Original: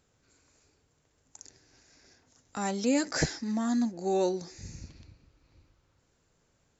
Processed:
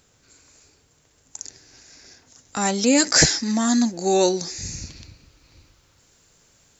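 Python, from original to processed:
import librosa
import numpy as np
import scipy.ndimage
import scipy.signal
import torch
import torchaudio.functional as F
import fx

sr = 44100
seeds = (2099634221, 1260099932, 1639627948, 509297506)

y = fx.high_shelf(x, sr, hz=2400.0, db=fx.steps((0.0, 7.0), (2.98, 12.0)))
y = y * 10.0 ** (8.0 / 20.0)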